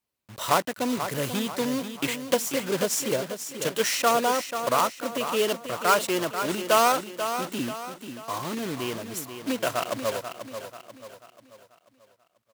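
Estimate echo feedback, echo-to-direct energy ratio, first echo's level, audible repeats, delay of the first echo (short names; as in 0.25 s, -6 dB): 43%, -8.0 dB, -9.0 dB, 4, 0.488 s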